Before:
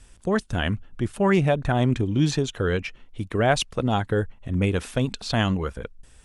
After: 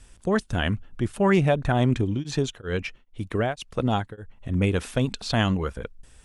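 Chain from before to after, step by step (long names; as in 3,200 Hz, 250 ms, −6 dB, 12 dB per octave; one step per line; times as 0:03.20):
0:02.13–0:04.37: tremolo along a rectified sine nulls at 2.9 Hz → 1.4 Hz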